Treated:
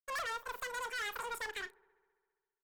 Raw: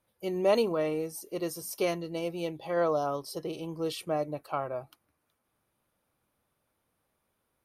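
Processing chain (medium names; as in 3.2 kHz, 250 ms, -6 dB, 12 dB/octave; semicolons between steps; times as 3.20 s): low-pass that closes with the level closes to 2.6 kHz, closed at -28 dBFS; wide varispeed 2.9×; crossover distortion -55 dBFS; rotary cabinet horn 5 Hz, later 0.6 Hz, at 0.45 s; valve stage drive 39 dB, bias 0.3; doubling 35 ms -14 dB; on a send: feedback echo behind a low-pass 67 ms, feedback 77%, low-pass 1.1 kHz, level -23.5 dB; on the sum: trim +3 dB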